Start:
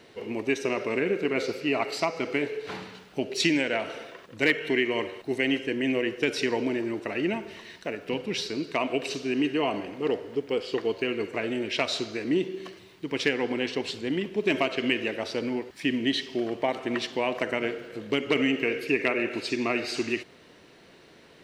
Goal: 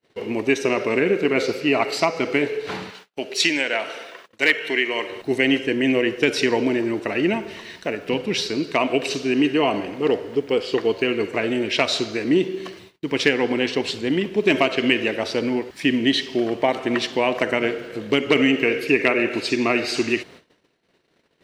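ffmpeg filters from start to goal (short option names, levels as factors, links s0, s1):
-filter_complex "[0:a]asettb=1/sr,asplit=3[s0][s1][s2];[s0]atrim=end=2.904[s3];[s1]atrim=start=2.9:end=5.1,asetpts=PTS-STARTPTS,afade=t=in:d=0.004:c=qsin,afade=t=out:st=2.196:d=0.004:c=qsin,highpass=f=730:p=1[s4];[s2]atrim=start=5.096[s5];[s3][s4]acrossfade=d=0.004:c1=hsin:c2=qsin[s6];[s6][s5]acrossfade=d=0.004:c1=qsin:c2=hsin,agate=range=0.01:threshold=0.00316:ratio=16:detection=peak,volume=2.24"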